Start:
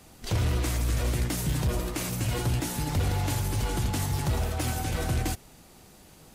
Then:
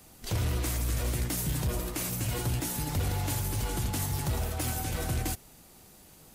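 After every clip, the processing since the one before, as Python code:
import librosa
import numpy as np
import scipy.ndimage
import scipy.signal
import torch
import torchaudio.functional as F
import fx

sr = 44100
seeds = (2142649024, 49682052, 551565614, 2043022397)

y = fx.high_shelf(x, sr, hz=10000.0, db=10.5)
y = y * librosa.db_to_amplitude(-3.5)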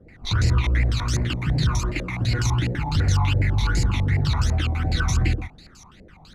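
y = x + 10.0 ** (-5.0 / 20.0) * np.pad(x, (int(125 * sr / 1000.0), 0))[:len(x)]
y = fx.phaser_stages(y, sr, stages=12, low_hz=490.0, high_hz=1100.0, hz=2.7, feedback_pct=45)
y = fx.filter_held_lowpass(y, sr, hz=12.0, low_hz=520.0, high_hz=5800.0)
y = y * librosa.db_to_amplitude(7.0)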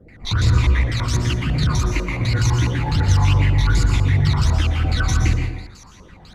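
y = 10.0 ** (-11.5 / 20.0) * np.tanh(x / 10.0 ** (-11.5 / 20.0))
y = fx.rev_plate(y, sr, seeds[0], rt60_s=0.64, hf_ratio=0.7, predelay_ms=105, drr_db=4.5)
y = y * librosa.db_to_amplitude(2.5)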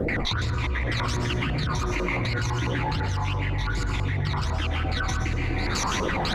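y = fx.bass_treble(x, sr, bass_db=-8, treble_db=-8)
y = fx.env_flatten(y, sr, amount_pct=100)
y = y * librosa.db_to_amplitude(-6.5)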